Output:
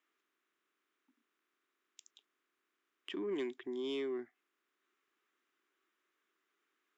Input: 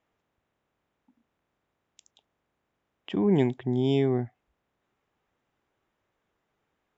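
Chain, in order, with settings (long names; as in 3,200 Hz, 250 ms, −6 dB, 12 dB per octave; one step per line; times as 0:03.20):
high-pass filter 340 Hz 24 dB per octave
flat-topped bell 660 Hz −14.5 dB 1.2 octaves
in parallel at +2 dB: downward compressor, threshold −42 dBFS, peak gain reduction 15 dB
on the sum: soft clipping −22.5 dBFS, distortion −21 dB
level −8 dB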